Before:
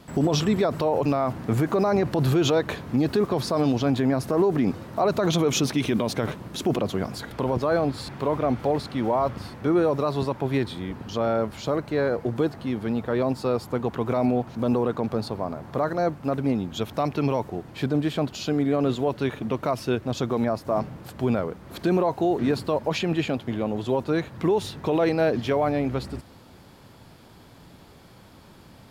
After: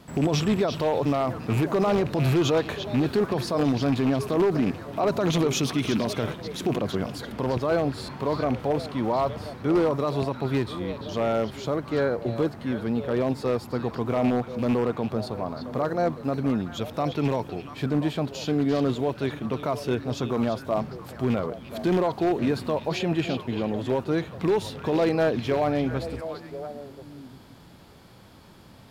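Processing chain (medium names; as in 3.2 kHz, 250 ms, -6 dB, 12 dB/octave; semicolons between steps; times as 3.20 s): rattle on loud lows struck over -23 dBFS, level -24 dBFS; harmonic-percussive split percussive -3 dB; on a send: repeats whose band climbs or falls 344 ms, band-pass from 3.7 kHz, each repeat -1.4 oct, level -5 dB; on the sum: wavefolder -15.5 dBFS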